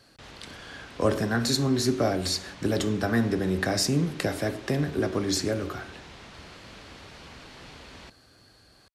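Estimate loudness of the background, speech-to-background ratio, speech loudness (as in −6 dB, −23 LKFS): −46.0 LKFS, 19.5 dB, −26.5 LKFS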